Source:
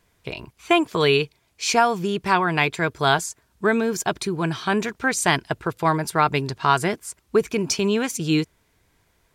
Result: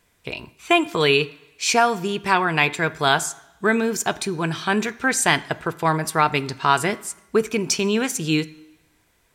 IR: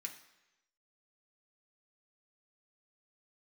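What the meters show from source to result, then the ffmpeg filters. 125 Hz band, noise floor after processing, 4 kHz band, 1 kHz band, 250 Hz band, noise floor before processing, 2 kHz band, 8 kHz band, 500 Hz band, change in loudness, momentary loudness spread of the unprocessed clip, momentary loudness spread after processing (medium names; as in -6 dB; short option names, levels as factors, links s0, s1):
-1.0 dB, -63 dBFS, +2.0 dB, +0.5 dB, 0.0 dB, -66 dBFS, +2.5 dB, +3.0 dB, 0.0 dB, +1.0 dB, 9 LU, 9 LU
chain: -filter_complex "[0:a]asplit=2[s0][s1];[1:a]atrim=start_sample=2205[s2];[s1][s2]afir=irnorm=-1:irlink=0,volume=0.631[s3];[s0][s3]amix=inputs=2:normalize=0"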